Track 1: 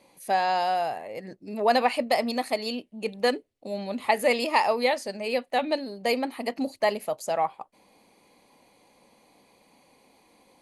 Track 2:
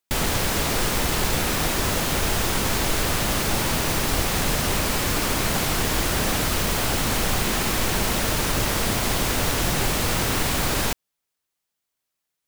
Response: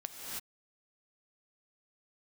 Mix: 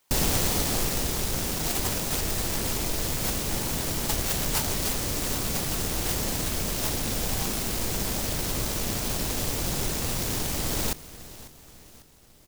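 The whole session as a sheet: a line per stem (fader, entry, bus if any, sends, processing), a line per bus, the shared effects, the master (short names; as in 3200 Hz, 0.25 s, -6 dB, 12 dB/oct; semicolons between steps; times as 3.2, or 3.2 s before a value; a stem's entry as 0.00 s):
-2.5 dB, 0.00 s, no send, no echo send, HPF 1100 Hz 24 dB/oct
+0.5 dB, 0.00 s, no send, echo send -22 dB, auto duck -6 dB, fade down 1.25 s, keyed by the first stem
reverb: off
echo: feedback echo 0.546 s, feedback 49%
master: noise-modulated delay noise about 5800 Hz, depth 0.22 ms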